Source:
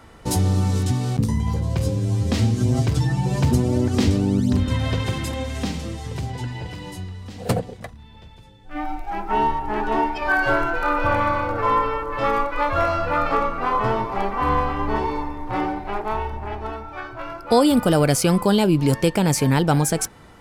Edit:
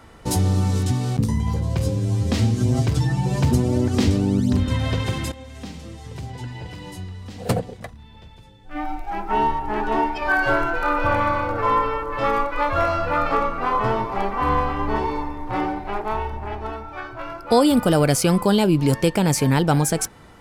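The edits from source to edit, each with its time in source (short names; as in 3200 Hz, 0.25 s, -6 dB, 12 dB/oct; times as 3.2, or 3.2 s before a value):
5.32–7.3 fade in linear, from -13.5 dB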